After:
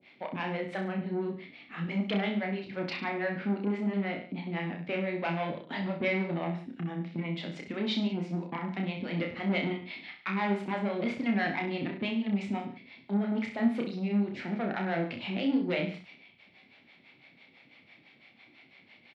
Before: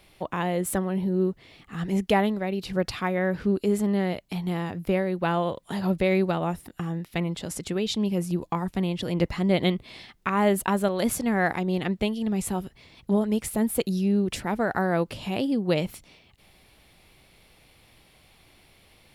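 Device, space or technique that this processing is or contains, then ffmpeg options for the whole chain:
guitar amplifier with harmonic tremolo: -filter_complex "[0:a]acrossover=split=480[a][b];[a]aeval=exprs='val(0)*(1-1/2+1/2*cos(2*PI*6*n/s))':c=same[c];[b]aeval=exprs='val(0)*(1-1/2-1/2*cos(2*PI*6*n/s))':c=same[d];[c][d]amix=inputs=2:normalize=0,asoftclip=type=tanh:threshold=-26.5dB,highpass=170,highpass=92,equalizer=f=250:t=q:w=4:g=9,equalizer=f=450:t=q:w=4:g=-3,equalizer=f=1.1k:t=q:w=4:g=-4,equalizer=f=2.2k:t=q:w=4:g=9,lowpass=f=4.1k:w=0.5412,lowpass=f=4.1k:w=1.3066,asettb=1/sr,asplit=3[e][f][g];[e]atrim=end=2.984[h];[f]atrim=start=2.98:end=4.38,asetpts=PTS-STARTPTS,afade=t=in:d=0.004:c=qsin,afade=t=out:st=1.396:d=0.004:c=qsin,bass=f=250:g=-2,treble=f=4k:g=-6[i];[g]atrim=start=4.376[j];[h][i]acrossfade=d=0.004:c1=hsin:c2=qsin[k];[k][j]acrossfade=d=0.004:c1=qsin:c2=hsin,aecho=1:1:30|63|99.3|139.2|183.2:0.631|0.398|0.251|0.158|0.1"

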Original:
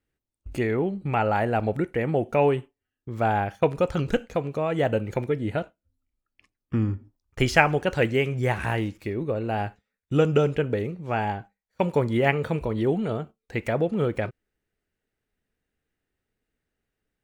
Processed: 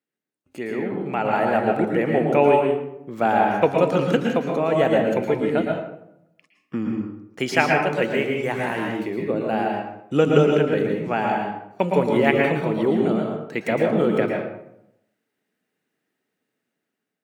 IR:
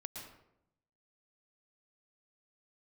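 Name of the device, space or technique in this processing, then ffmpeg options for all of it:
far laptop microphone: -filter_complex "[1:a]atrim=start_sample=2205[a];[0:a][a]afir=irnorm=-1:irlink=0,highpass=f=170:w=0.5412,highpass=f=170:w=1.3066,dynaudnorm=f=520:g=5:m=9dB"

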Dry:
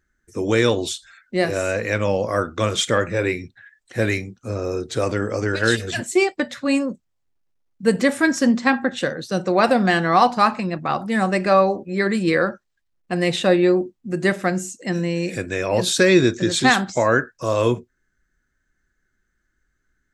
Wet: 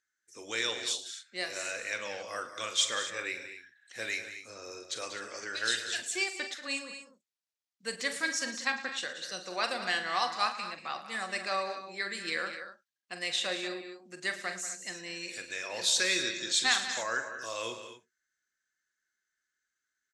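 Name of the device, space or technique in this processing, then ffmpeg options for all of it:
piezo pickup straight into a mixer: -af "lowpass=5.7k,aderivative,aecho=1:1:44|111|187|223|254:0.282|0.168|0.251|0.126|0.2,volume=1.5dB"

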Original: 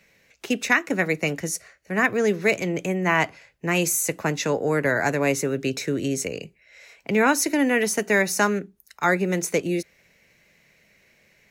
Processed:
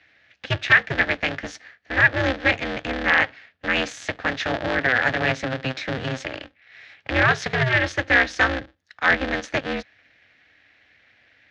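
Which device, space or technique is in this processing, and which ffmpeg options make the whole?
ring modulator pedal into a guitar cabinet: -af "aeval=exprs='val(0)*sgn(sin(2*PI*130*n/s))':c=same,highpass=81,equalizer=f=100:t=q:w=4:g=7,equalizer=f=190:t=q:w=4:g=-8,equalizer=f=380:t=q:w=4:g=-10,equalizer=f=1k:t=q:w=4:g=-6,equalizer=f=1.7k:t=q:w=4:g=9,equalizer=f=3.4k:t=q:w=4:g=4,lowpass=f=4.5k:w=0.5412,lowpass=f=4.5k:w=1.3066"

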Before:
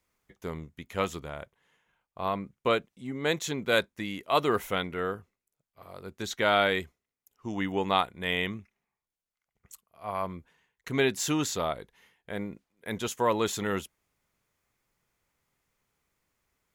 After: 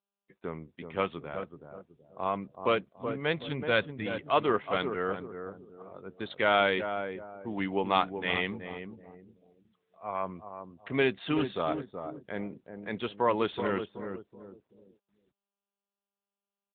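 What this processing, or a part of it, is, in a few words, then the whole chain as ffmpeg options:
mobile call with aggressive noise cancelling: -filter_complex "[0:a]asettb=1/sr,asplit=3[a][b][c];[a]atrim=end=2.524[d];[b]atrim=start=2.52:end=4.04,asetpts=PTS-STARTPTS,afade=t=in:d=0.004:c=qsin,afade=t=out:st=1.516:d=0.004:c=qsin,asubboost=boost=9:cutoff=140[e];[c]atrim=start=4.036[f];[d][e]acrossfade=d=0.004:c1=hsin:c2=qsin[g];[g][f]acrossfade=d=0.004:c1=qsin:c2=hsin,asettb=1/sr,asplit=3[h][i][j];[h]atrim=end=6.554[k];[i]atrim=start=6.55:end=7.88,asetpts=PTS-STARTPTS,afade=t=in:d=0.004:c=qsin,afade=t=out:st=1.326:d=0.004:c=qsin,bandreject=f=1.9k:w=22[l];[j]atrim=start=7.876[m];[k][l]acrossfade=d=0.004:c1=hsin:c2=qsin[n];[n][m]acrossfade=d=0.004:c1=qsin:c2=hsin,highpass=f=150:p=1,asplit=2[o][p];[p]adelay=376,lowpass=f=1k:p=1,volume=-6.5dB,asplit=2[q][r];[r]adelay=376,lowpass=f=1k:p=1,volume=0.37,asplit=2[s][t];[t]adelay=376,lowpass=f=1k:p=1,volume=0.37,asplit=2[u][v];[v]adelay=376,lowpass=f=1k:p=1,volume=0.37[w];[o][q][s][u][w]amix=inputs=5:normalize=0,afftdn=nr=34:nf=-54" -ar 8000 -c:a libopencore_amrnb -b:a 10200

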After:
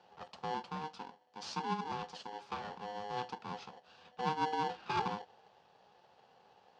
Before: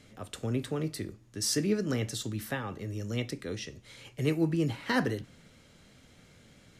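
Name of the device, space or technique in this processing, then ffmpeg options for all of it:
ring modulator pedal into a guitar cabinet: -filter_complex "[0:a]asettb=1/sr,asplit=3[a][b][c];[a]atrim=end=0.544[d];[b]atrim=start=0.54:end=2.49,asetpts=PTS-STARTPTS,afade=t=in:d=0.004:c=qsin,afade=t=out:st=1.946:d=0.004:c=qsin,lowshelf=f=220:g=-7.5[e];[c]atrim=start=2.486[f];[d][e]acrossfade=d=0.004:c1=hsin:c2=qsin[g];[g][f]acrossfade=d=0.004:c1=qsin:c2=hsin,aeval=exprs='val(0)*sgn(sin(2*PI*620*n/s))':c=same,highpass=100,equalizer=f=190:t=q:w=4:g=5,equalizer=f=320:t=q:w=4:g=-8,equalizer=f=860:t=q:w=4:g=6,equalizer=f=2.1k:t=q:w=4:g=-10,equalizer=f=3.7k:t=q:w=4:g=-4,lowpass=f=4.6k:w=0.5412,lowpass=f=4.6k:w=1.3066,volume=-7.5dB"

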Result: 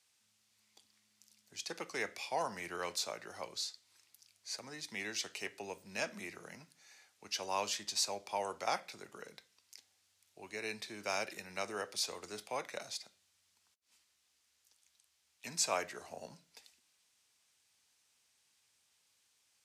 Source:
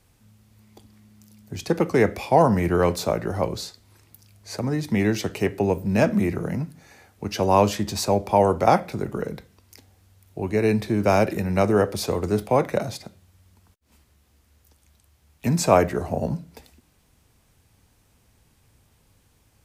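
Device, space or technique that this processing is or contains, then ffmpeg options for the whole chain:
piezo pickup straight into a mixer: -af "lowpass=5.8k,aderivative,volume=1dB"

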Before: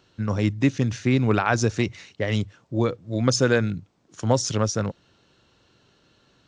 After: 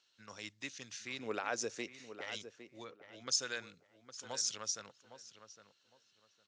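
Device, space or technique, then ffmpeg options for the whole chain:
piezo pickup straight into a mixer: -filter_complex "[0:a]lowpass=6.4k,aderivative,asettb=1/sr,asplit=3[a][b][c];[a]atrim=end=1.194[d];[b]atrim=start=1.19:end=2.21,asetpts=PTS-STARTPTS,afade=t=in:d=0.004:c=qsin,afade=t=out:st=1.016:d=0.004:c=qsin,equalizer=f=250:t=o:w=1:g=7,equalizer=f=500:t=o:w=1:g=12,equalizer=f=4k:t=o:w=1:g=-5[e];[c]atrim=start=2.206[f];[d][e]acrossfade=d=0.004:c1=hsin:c2=qsin[g];[g][f]acrossfade=d=0.004:c1=qsin:c2=hsin,asplit=3[h][i][j];[h]afade=t=out:st=2.83:d=0.02[k];[i]lowpass=f=1.2k:p=1,afade=t=in:st=2.83:d=0.02,afade=t=out:st=3.26:d=0.02[l];[j]afade=t=in:st=3.26:d=0.02[m];[k][l][m]amix=inputs=3:normalize=0,asplit=2[n][o];[o]adelay=809,lowpass=f=2.1k:p=1,volume=-11dB,asplit=2[p][q];[q]adelay=809,lowpass=f=2.1k:p=1,volume=0.23,asplit=2[r][s];[s]adelay=809,lowpass=f=2.1k:p=1,volume=0.23[t];[n][p][r][t]amix=inputs=4:normalize=0,volume=-2.5dB"

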